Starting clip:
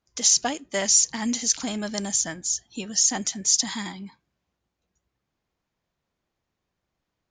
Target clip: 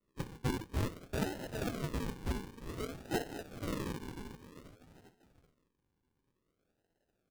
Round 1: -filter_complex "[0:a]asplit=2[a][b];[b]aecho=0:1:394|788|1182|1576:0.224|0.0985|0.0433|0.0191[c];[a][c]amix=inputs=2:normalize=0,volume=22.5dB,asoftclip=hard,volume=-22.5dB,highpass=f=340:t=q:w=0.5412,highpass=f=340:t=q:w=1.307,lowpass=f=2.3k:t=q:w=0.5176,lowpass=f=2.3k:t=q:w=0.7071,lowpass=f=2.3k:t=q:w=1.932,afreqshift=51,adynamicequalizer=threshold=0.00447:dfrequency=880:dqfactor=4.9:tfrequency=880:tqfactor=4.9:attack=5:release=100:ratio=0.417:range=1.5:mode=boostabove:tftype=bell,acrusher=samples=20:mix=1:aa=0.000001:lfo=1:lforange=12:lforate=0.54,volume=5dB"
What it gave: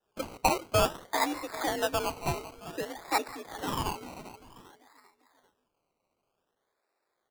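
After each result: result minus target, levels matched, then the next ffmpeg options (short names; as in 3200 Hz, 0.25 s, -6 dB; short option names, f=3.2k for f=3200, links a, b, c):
decimation with a swept rate: distortion -22 dB; overloaded stage: distortion -6 dB
-filter_complex "[0:a]asplit=2[a][b];[b]aecho=0:1:394|788|1182|1576:0.224|0.0985|0.0433|0.0191[c];[a][c]amix=inputs=2:normalize=0,volume=22.5dB,asoftclip=hard,volume=-22.5dB,highpass=f=340:t=q:w=0.5412,highpass=f=340:t=q:w=1.307,lowpass=f=2.3k:t=q:w=0.5176,lowpass=f=2.3k:t=q:w=0.7071,lowpass=f=2.3k:t=q:w=1.932,afreqshift=51,adynamicequalizer=threshold=0.00447:dfrequency=880:dqfactor=4.9:tfrequency=880:tqfactor=4.9:attack=5:release=100:ratio=0.417:range=1.5:mode=boostabove:tftype=bell,acrusher=samples=54:mix=1:aa=0.000001:lfo=1:lforange=32.4:lforate=0.54,volume=5dB"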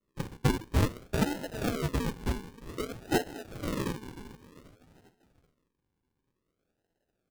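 overloaded stage: distortion -6 dB
-filter_complex "[0:a]asplit=2[a][b];[b]aecho=0:1:394|788|1182|1576:0.224|0.0985|0.0433|0.0191[c];[a][c]amix=inputs=2:normalize=0,volume=33.5dB,asoftclip=hard,volume=-33.5dB,highpass=f=340:t=q:w=0.5412,highpass=f=340:t=q:w=1.307,lowpass=f=2.3k:t=q:w=0.5176,lowpass=f=2.3k:t=q:w=0.7071,lowpass=f=2.3k:t=q:w=1.932,afreqshift=51,adynamicequalizer=threshold=0.00447:dfrequency=880:dqfactor=4.9:tfrequency=880:tqfactor=4.9:attack=5:release=100:ratio=0.417:range=1.5:mode=boostabove:tftype=bell,acrusher=samples=54:mix=1:aa=0.000001:lfo=1:lforange=32.4:lforate=0.54,volume=5dB"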